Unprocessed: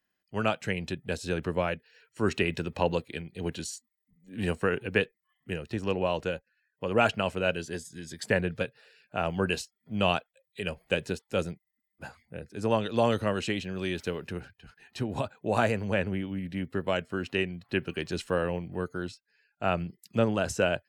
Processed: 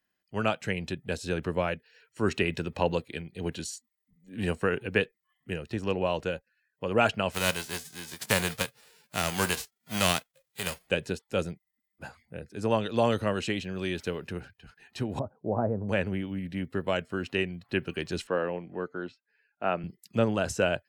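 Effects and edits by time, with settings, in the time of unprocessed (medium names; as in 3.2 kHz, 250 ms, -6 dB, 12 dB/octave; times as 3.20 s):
7.31–10.86 s: formants flattened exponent 0.3
15.19–15.89 s: Bessel low-pass 690 Hz, order 6
18.27–19.84 s: band-pass 220–2500 Hz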